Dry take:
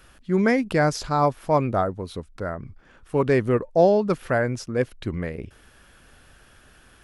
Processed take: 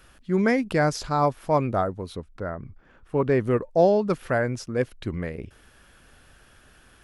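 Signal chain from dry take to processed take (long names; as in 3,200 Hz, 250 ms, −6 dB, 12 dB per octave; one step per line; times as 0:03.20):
0:02.14–0:03.39: high-shelf EQ 4,800 Hz → 3,300 Hz −11.5 dB
level −1.5 dB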